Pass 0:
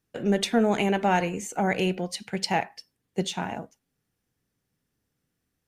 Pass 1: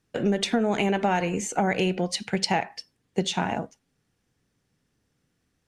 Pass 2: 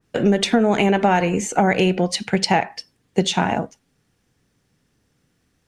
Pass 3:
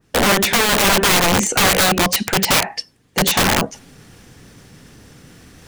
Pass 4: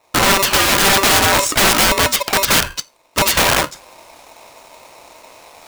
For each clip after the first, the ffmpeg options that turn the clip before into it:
-af "lowpass=8.6k,acompressor=threshold=-26dB:ratio=6,volume=6dB"
-af "adynamicequalizer=threshold=0.0112:dfrequency=2500:dqfactor=0.7:tfrequency=2500:tqfactor=0.7:attack=5:release=100:ratio=0.375:range=1.5:mode=cutabove:tftype=highshelf,volume=7dB"
-af "areverse,acompressor=mode=upward:threshold=-37dB:ratio=2.5,areverse,aeval=exprs='(mod(6.68*val(0)+1,2)-1)/6.68':c=same,volume=7.5dB"
-af "aeval=exprs='val(0)*sgn(sin(2*PI*780*n/s))':c=same,volume=1.5dB"

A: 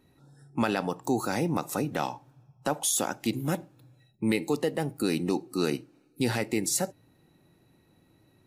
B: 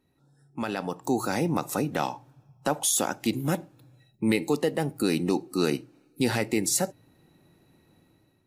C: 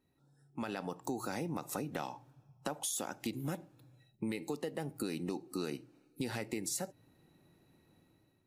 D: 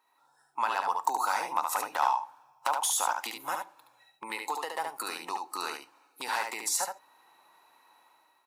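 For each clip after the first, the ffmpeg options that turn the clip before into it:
-af "dynaudnorm=f=570:g=3:m=10.5dB,bandreject=f=60:t=h:w=6,bandreject=f=120:t=h:w=6,volume=-7.5dB"
-af "acompressor=threshold=-28dB:ratio=6,volume=-6dB"
-af "aeval=exprs='0.0447*(abs(mod(val(0)/0.0447+3,4)-2)-1)':c=same,highpass=f=970:t=q:w=4.9,aecho=1:1:72:0.562,volume=7.5dB"

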